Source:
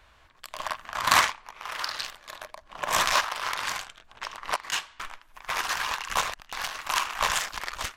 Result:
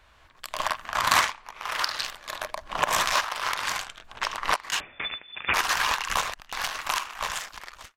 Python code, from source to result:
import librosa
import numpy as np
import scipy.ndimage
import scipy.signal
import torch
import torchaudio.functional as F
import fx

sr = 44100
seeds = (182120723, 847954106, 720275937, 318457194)

y = fx.fade_out_tail(x, sr, length_s=1.65)
y = fx.recorder_agc(y, sr, target_db=-11.0, rise_db_per_s=12.0, max_gain_db=30)
y = fx.freq_invert(y, sr, carrier_hz=3500, at=(4.8, 5.54))
y = F.gain(torch.from_numpy(y), -1.0).numpy()